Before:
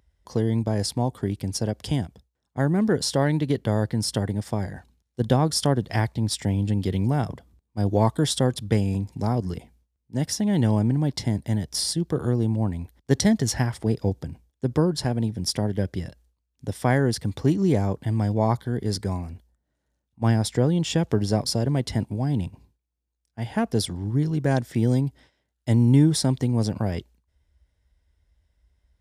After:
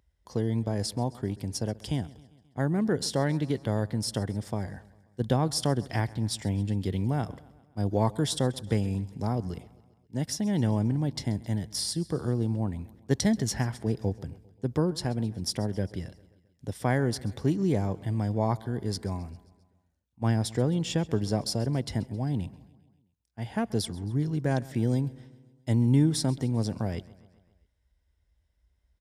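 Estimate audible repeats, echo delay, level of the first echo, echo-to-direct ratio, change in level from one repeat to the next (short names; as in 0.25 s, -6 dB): 3, 0.133 s, -21.0 dB, -19.0 dB, -4.5 dB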